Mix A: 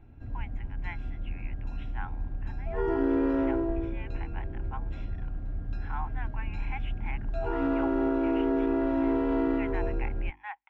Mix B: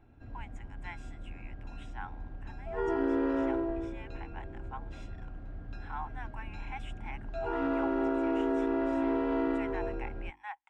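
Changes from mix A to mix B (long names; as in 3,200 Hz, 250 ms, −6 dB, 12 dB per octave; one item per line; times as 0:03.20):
speech: remove low-pass with resonance 2,600 Hz, resonance Q 1.6
master: add low-shelf EQ 240 Hz −9.5 dB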